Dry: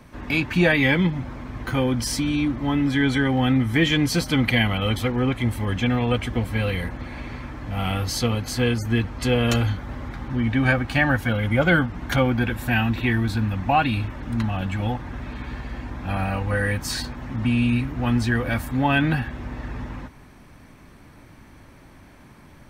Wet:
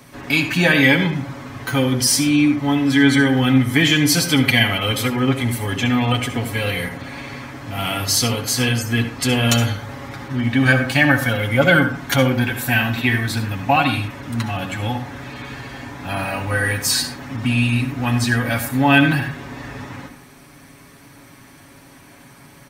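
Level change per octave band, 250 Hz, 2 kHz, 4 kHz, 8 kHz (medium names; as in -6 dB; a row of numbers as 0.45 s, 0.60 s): +4.0 dB, +6.0 dB, +8.0 dB, +12.0 dB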